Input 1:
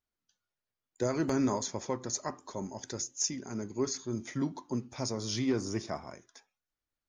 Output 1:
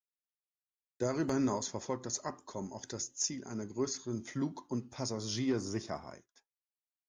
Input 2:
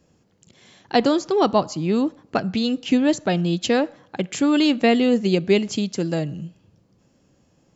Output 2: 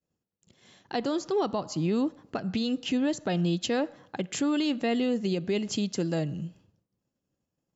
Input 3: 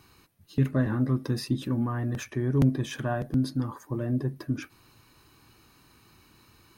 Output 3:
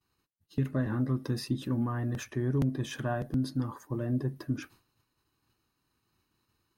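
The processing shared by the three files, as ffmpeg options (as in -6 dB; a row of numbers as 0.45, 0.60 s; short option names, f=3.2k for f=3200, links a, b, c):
-af "bandreject=f=2.3k:w=16,agate=range=-33dB:threshold=-47dB:ratio=3:detection=peak,alimiter=limit=-17dB:level=0:latency=1:release=186,volume=-2.5dB"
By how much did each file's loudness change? -2.5, -8.0, -4.0 LU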